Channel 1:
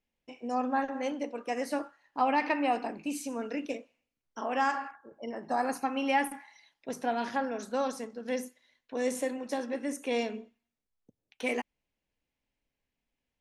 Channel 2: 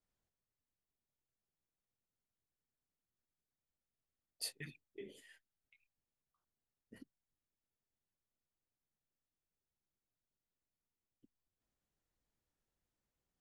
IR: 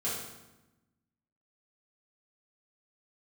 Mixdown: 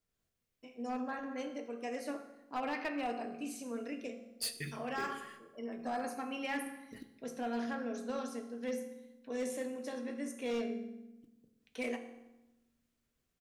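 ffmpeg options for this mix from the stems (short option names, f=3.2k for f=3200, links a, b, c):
-filter_complex "[0:a]adelay=350,volume=-9dB,asplit=2[a][b];[b]volume=-9dB[c];[1:a]dynaudnorm=f=120:g=3:m=3.5dB,acrusher=bits=6:mode=log:mix=0:aa=0.000001,volume=1.5dB,asplit=2[d][e];[e]volume=-11.5dB[f];[2:a]atrim=start_sample=2205[g];[c][f]amix=inputs=2:normalize=0[h];[h][g]afir=irnorm=-1:irlink=0[i];[a][d][i]amix=inputs=3:normalize=0,equalizer=f=850:t=o:w=0.39:g=-7.5,asoftclip=type=hard:threshold=-30dB"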